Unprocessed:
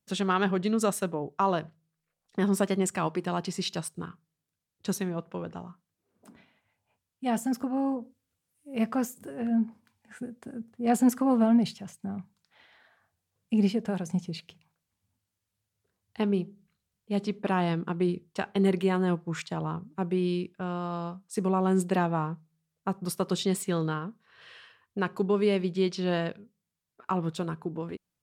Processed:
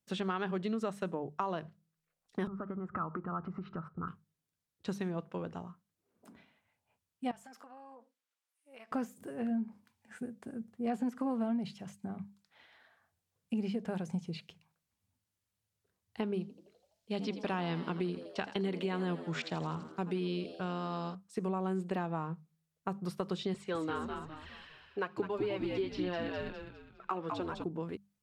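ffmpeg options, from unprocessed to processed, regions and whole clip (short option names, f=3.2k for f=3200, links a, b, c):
-filter_complex "[0:a]asettb=1/sr,asplit=3[a][b][c];[a]atrim=end=2.474[d];[b]atrim=start=2.47:end=4.08,asetpts=PTS-STARTPTS,afade=t=in:d=0.004:c=qsin,afade=t=out:st=1.606:d=0.004:c=qsin,aemphasis=mode=reproduction:type=riaa,acompressor=threshold=-33dB:ratio=8:attack=3.2:release=140:knee=1:detection=peak,lowpass=f=1.3k:t=q:w=15[e];[c]atrim=start=4.076[f];[d][e]acrossfade=d=0.004:c1=hsin:c2=qsin[g];[g][f]acrossfade=d=0.004:c1=qsin:c2=hsin,asettb=1/sr,asplit=3[h][i][j];[h]atrim=end=7.314[k];[i]atrim=start=7.31:end=8.92,asetpts=PTS-STARTPTS,afade=t=in:d=0.004:c=qsin,afade=t=out:st=1.606:d=0.004:c=qsin,highpass=830,highshelf=f=7.3k:g=-10.5,acompressor=threshold=-46dB:ratio=6:attack=3.2:release=140:knee=1:detection=peak[l];[j]atrim=start=8.916[m];[k][l]acrossfade=d=0.004:c1=hsin:c2=qsin[n];[n][m]acrossfade=d=0.004:c1=qsin:c2=hsin,asettb=1/sr,asplit=3[o][p][q];[o]atrim=end=16.414[r];[p]atrim=start=16.41:end=21.15,asetpts=PTS-STARTPTS,afade=t=in:d=0.004:c=qsin,afade=t=out:st=4.736:d=0.004:c=qsin,equalizer=f=4.7k:w=0.76:g=9.5,asplit=7[s][t][u][v][w][x][y];[t]adelay=83,afreqshift=78,volume=-15.5dB[z];[u]adelay=166,afreqshift=156,volume=-19.9dB[aa];[v]adelay=249,afreqshift=234,volume=-24.4dB[ab];[w]adelay=332,afreqshift=312,volume=-28.8dB[ac];[x]adelay=415,afreqshift=390,volume=-33.2dB[ad];[y]adelay=498,afreqshift=468,volume=-37.7dB[ae];[s][z][aa][ab][ac][ad][ae]amix=inputs=7:normalize=0,atrim=end_sample=209034[af];[q]atrim=start=21.146[ag];[r][af]acrossfade=d=0.004:c1=hsin:c2=qsin[ah];[ah][ag]acrossfade=d=0.004:c1=qsin:c2=hsin,asettb=1/sr,asplit=3[ai][aj][ak];[ai]atrim=end=23.544[al];[aj]atrim=start=23.54:end=27.64,asetpts=PTS-STARTPTS,afade=t=in:d=0.004:c=qsin,afade=t=out:st=4.096:d=0.004:c=qsin,highpass=270,lowpass=5.7k,aphaser=in_gain=1:out_gain=1:delay=4.5:decay=0.44:speed=1.2:type=triangular,asplit=6[am][an][ao][ap][aq][ar];[an]adelay=204,afreqshift=-78,volume=-5.5dB[as];[ao]adelay=408,afreqshift=-156,volume=-13.7dB[at];[ap]adelay=612,afreqshift=-234,volume=-21.9dB[au];[aq]adelay=816,afreqshift=-312,volume=-30dB[av];[ar]adelay=1020,afreqshift=-390,volume=-38.2dB[aw];[am][as][at][au][av][aw]amix=inputs=6:normalize=0,atrim=end_sample=180810[ax];[ak]atrim=start=27.636[ay];[al][ax]acrossfade=d=0.004:c1=hsin:c2=qsin[az];[az][ay]acrossfade=d=0.004:c1=qsin:c2=hsin,acrossover=split=4000[ba][bb];[bb]acompressor=threshold=-53dB:ratio=4:attack=1:release=60[bc];[ba][bc]amix=inputs=2:normalize=0,bandreject=f=50:t=h:w=6,bandreject=f=100:t=h:w=6,bandreject=f=150:t=h:w=6,bandreject=f=200:t=h:w=6,acompressor=threshold=-28dB:ratio=6,volume=-3dB"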